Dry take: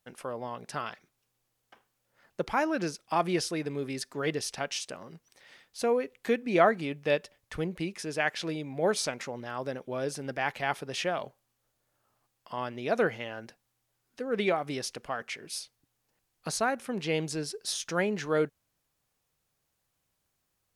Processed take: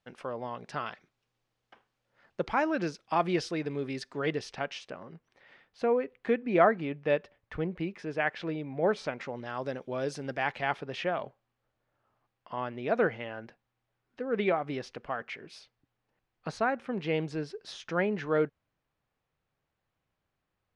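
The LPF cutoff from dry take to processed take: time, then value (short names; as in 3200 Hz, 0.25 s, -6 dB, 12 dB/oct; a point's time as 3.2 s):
4.12 s 4200 Hz
4.96 s 2300 Hz
9.1 s 2300 Hz
9.52 s 5600 Hz
10.21 s 5600 Hz
11.03 s 2600 Hz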